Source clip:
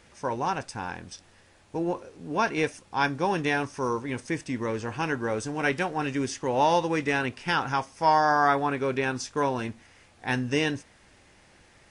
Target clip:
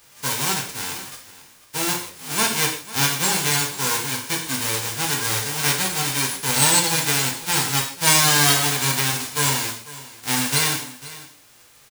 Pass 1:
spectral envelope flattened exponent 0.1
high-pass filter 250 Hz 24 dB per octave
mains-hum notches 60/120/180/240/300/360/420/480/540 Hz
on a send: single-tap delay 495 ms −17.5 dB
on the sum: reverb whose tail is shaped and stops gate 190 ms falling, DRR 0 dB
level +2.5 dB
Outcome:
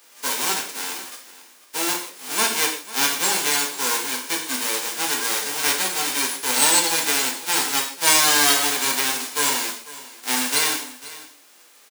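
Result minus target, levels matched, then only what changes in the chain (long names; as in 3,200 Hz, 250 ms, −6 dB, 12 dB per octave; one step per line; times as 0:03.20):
250 Hz band −3.0 dB
remove: high-pass filter 250 Hz 24 dB per octave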